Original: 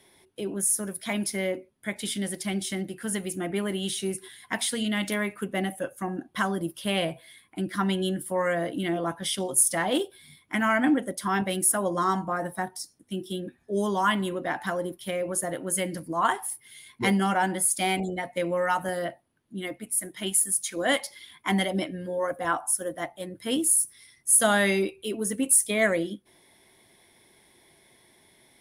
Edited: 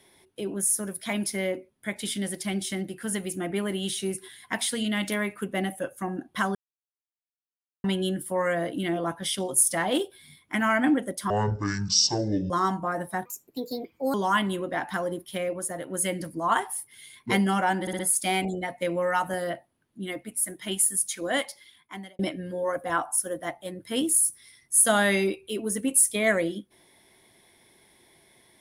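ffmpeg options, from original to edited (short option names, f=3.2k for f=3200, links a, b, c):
-filter_complex "[0:a]asplit=13[a][b][c][d][e][f][g][h][i][j][k][l][m];[a]atrim=end=6.55,asetpts=PTS-STARTPTS,afade=t=out:st=6.546:d=0.004:c=hsin[n];[b]atrim=start=6.55:end=7.84,asetpts=PTS-STARTPTS,volume=0[o];[c]atrim=start=7.84:end=11.304,asetpts=PTS-STARTPTS,afade=t=in:d=0.004:c=hsin[p];[d]atrim=start=11.3:end=11.95,asetpts=PTS-STARTPTS,asetrate=23814,aresample=44100,atrim=end_sample=53083,asetpts=PTS-STARTPTS[q];[e]atrim=start=11.946:end=12.704[r];[f]atrim=start=12.7:end=13.87,asetpts=PTS-STARTPTS,asetrate=58212,aresample=44100[s];[g]atrim=start=13.866:end=15.262[t];[h]atrim=start=15.258:end=15.632,asetpts=PTS-STARTPTS,volume=-3.5dB[u];[i]atrim=start=15.628:end=17.602[v];[j]atrim=start=17.538:end=17.602[w];[k]atrim=start=17.538:end=17.602[x];[l]atrim=start=17.538:end=21.74,asetpts=PTS-STARTPTS,afade=t=out:st=3.092:d=1.11[y];[m]atrim=start=21.74,asetpts=PTS-STARTPTS,afade=t=in:d=0.004:c=hsin[z];[n][o][p]concat=n=3:v=0:a=1[aa];[aa][q]acrossfade=d=0.004:c1=hsin:c2=hsin[ab];[ab][r]acrossfade=d=0.004:c1=hsin:c2=hsin[ac];[ac][s]acrossfade=d=0.004:c1=hsin:c2=hsin[ad];[ad][t]acrossfade=d=0.004:c1=hsin:c2=hsin[ae];[ae][u]acrossfade=d=0.004:c1=hsin:c2=hsin[af];[af][v]acrossfade=d=0.004:c1=hsin:c2=hsin[ag];[ag][w]acrossfade=d=0.004:c1=hsin:c2=hsin[ah];[ah][x]acrossfade=d=0.004:c1=hsin:c2=hsin[ai];[y][z]concat=n=2:v=0:a=1[aj];[ai][aj]acrossfade=d=0.004:c1=hsin:c2=hsin"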